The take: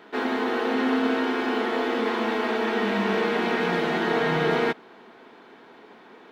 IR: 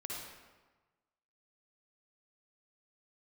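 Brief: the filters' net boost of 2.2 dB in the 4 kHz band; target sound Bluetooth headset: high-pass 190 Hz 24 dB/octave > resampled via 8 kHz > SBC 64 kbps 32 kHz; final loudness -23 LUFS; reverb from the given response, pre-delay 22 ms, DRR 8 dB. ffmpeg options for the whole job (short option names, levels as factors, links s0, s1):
-filter_complex "[0:a]equalizer=f=4000:t=o:g=3,asplit=2[s0][s1];[1:a]atrim=start_sample=2205,adelay=22[s2];[s1][s2]afir=irnorm=-1:irlink=0,volume=0.398[s3];[s0][s3]amix=inputs=2:normalize=0,highpass=f=190:w=0.5412,highpass=f=190:w=1.3066,aresample=8000,aresample=44100,volume=1.12" -ar 32000 -c:a sbc -b:a 64k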